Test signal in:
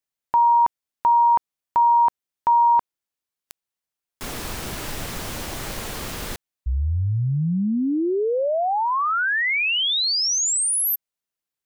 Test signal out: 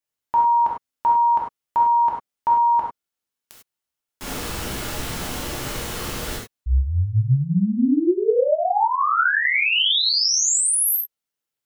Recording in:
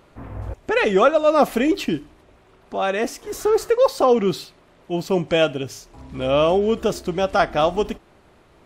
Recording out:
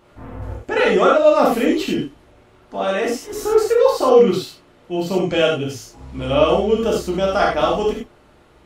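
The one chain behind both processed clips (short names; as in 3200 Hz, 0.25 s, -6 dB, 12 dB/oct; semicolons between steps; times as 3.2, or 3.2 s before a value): non-linear reverb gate 0.12 s flat, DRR -3.5 dB; gain -3 dB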